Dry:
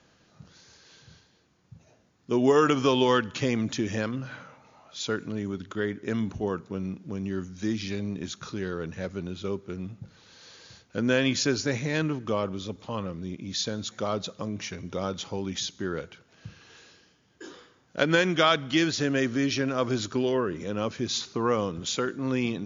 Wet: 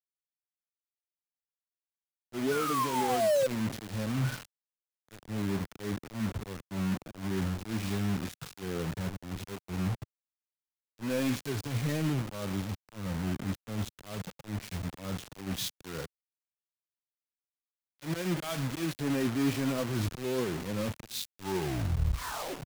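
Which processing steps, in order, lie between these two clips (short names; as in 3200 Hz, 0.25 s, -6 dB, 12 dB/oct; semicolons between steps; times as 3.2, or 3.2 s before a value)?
tape stop at the end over 1.44 s; auto swell 0.255 s; painted sound fall, 2.51–3.47, 510–1500 Hz -21 dBFS; in parallel at -8 dB: soft clip -16.5 dBFS, distortion -14 dB; on the sum: sample leveller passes 3; tone controls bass +6 dB, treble -10 dB; reverse; compressor 20:1, threshold -19 dBFS, peak gain reduction 12 dB; reverse; harmonic-percussive split percussive -15 dB; bit-crush 5-bit; three-band expander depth 100%; gain -7.5 dB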